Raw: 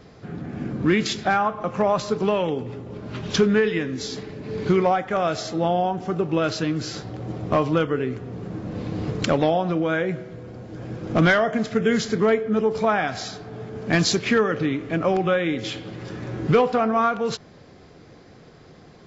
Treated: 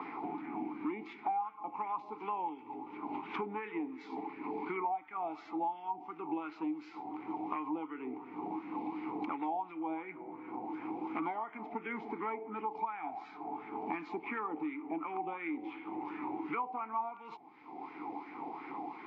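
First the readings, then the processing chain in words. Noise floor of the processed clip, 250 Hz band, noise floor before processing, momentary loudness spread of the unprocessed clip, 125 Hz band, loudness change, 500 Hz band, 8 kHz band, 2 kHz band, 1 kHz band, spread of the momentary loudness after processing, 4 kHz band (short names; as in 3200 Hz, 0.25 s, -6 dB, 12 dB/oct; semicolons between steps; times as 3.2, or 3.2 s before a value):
-53 dBFS, -15.0 dB, -48 dBFS, 14 LU, -32.0 dB, -16.5 dB, -22.0 dB, n/a, -19.0 dB, -10.0 dB, 7 LU, under -25 dB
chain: wah 2.8 Hz 710–1600 Hz, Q 4.2; vowel filter u; three-band squash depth 100%; gain +11 dB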